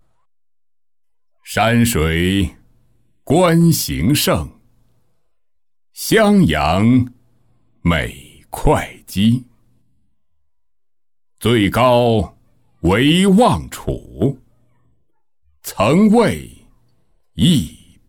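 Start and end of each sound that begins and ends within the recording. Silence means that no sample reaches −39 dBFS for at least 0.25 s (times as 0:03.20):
0:01.46–0:02.55
0:03.27–0:04.51
0:05.96–0:07.12
0:07.84–0:09.47
0:11.38–0:12.31
0:12.83–0:14.40
0:15.64–0:16.63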